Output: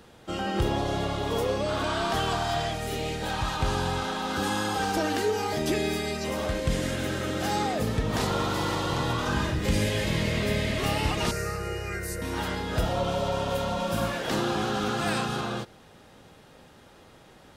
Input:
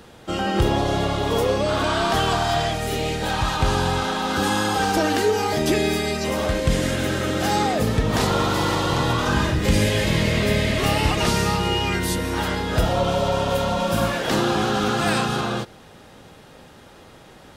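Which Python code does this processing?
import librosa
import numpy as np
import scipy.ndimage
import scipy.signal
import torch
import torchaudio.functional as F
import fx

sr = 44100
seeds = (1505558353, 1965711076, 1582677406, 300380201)

y = fx.fixed_phaser(x, sr, hz=910.0, stages=6, at=(11.31, 12.22))
y = F.gain(torch.from_numpy(y), -6.5).numpy()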